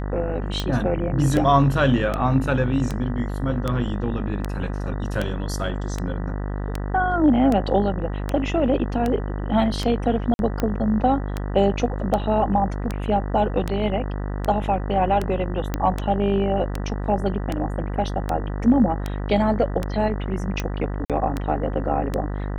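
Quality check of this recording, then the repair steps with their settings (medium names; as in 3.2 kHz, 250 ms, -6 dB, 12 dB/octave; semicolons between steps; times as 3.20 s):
buzz 50 Hz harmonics 39 -27 dBFS
tick 78 rpm -11 dBFS
10.34–10.39 s: dropout 51 ms
15.74 s: pop -10 dBFS
21.05–21.10 s: dropout 47 ms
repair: de-click; de-hum 50 Hz, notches 39; interpolate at 10.34 s, 51 ms; interpolate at 21.05 s, 47 ms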